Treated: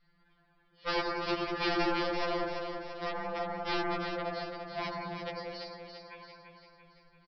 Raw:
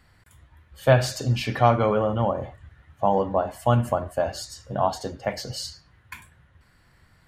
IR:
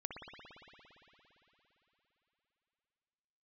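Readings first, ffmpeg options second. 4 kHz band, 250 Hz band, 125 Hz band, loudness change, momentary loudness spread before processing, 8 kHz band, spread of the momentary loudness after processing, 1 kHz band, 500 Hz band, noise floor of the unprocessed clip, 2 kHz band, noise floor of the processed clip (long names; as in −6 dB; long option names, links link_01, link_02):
−3.5 dB, −7.5 dB, −22.0 dB, −10.5 dB, 16 LU, below −20 dB, 16 LU, −9.5 dB, −11.5 dB, −59 dBFS, −3.0 dB, −68 dBFS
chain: -filter_complex "[0:a]adynamicequalizer=threshold=0.0282:dfrequency=380:dqfactor=0.82:tfrequency=380:tqfactor=0.82:attack=5:release=100:ratio=0.375:range=1.5:mode=boostabove:tftype=bell,acrossover=split=140|1500[link_01][link_02][link_03];[link_02]asoftclip=type=tanh:threshold=-18dB[link_04];[link_01][link_04][link_03]amix=inputs=3:normalize=0,lowshelf=frequency=130:gain=5,aresample=11025,aeval=exprs='(mod(5.96*val(0)+1,2)-1)/5.96':channel_layout=same,aresample=44100,aecho=1:1:339|678|1017|1356|1695|2034|2373:0.473|0.251|0.133|0.0704|0.0373|0.0198|0.0105[link_05];[1:a]atrim=start_sample=2205,afade=type=out:start_time=0.19:duration=0.01,atrim=end_sample=8820,asetrate=25578,aresample=44100[link_06];[link_05][link_06]afir=irnorm=-1:irlink=0,afftfilt=real='re*2.83*eq(mod(b,8),0)':imag='im*2.83*eq(mod(b,8),0)':win_size=2048:overlap=0.75,volume=-7dB"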